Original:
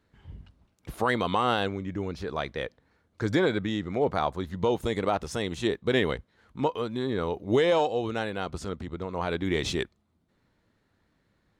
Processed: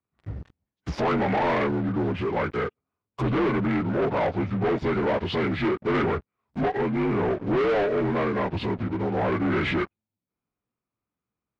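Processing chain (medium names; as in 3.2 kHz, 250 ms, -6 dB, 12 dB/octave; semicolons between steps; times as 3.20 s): frequency axis rescaled in octaves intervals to 81%; waveshaping leveller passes 5; low-pass that closes with the level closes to 2.8 kHz, closed at -17.5 dBFS; trim -6.5 dB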